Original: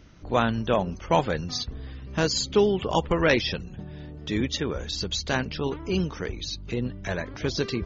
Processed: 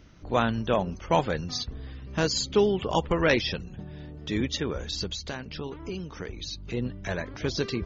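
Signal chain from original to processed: 5.06–6.74 compressor 10:1, threshold -30 dBFS, peak gain reduction 10.5 dB; gain -1.5 dB

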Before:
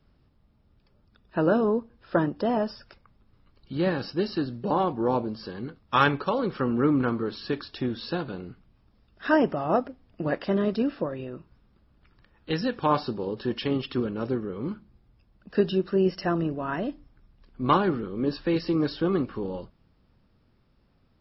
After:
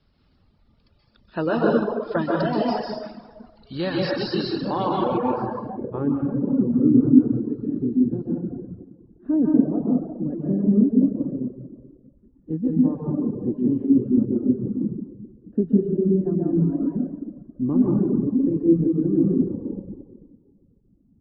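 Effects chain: plate-style reverb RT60 1.8 s, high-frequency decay 0.65×, pre-delay 0.115 s, DRR -5 dB; reverb removal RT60 0.93 s; low-pass sweep 4400 Hz -> 270 Hz, 5–6.13; gain -1 dB

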